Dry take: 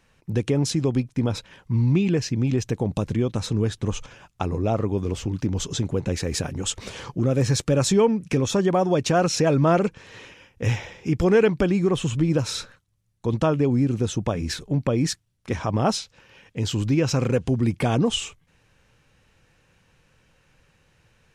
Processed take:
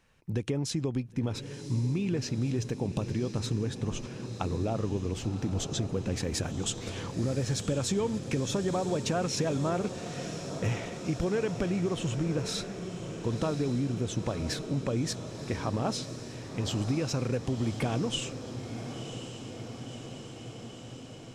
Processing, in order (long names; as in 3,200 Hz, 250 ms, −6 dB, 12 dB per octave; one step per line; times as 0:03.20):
downward compressor, threshold −21 dBFS, peak gain reduction 8.5 dB
feedback delay with all-pass diffusion 1,033 ms, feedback 72%, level −10 dB
level −5 dB